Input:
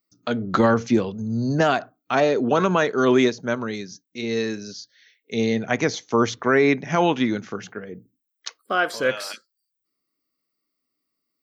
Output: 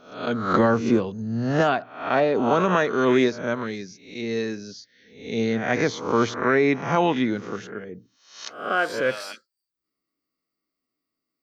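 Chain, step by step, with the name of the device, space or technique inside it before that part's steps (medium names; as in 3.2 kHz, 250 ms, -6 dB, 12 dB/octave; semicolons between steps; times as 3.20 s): reverse spectral sustain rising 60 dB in 0.55 s; 1.69–2.35 s: peaking EQ 6.6 kHz -14.5 dB 0.47 oct; behind a face mask (treble shelf 3.5 kHz -7 dB); trim -2 dB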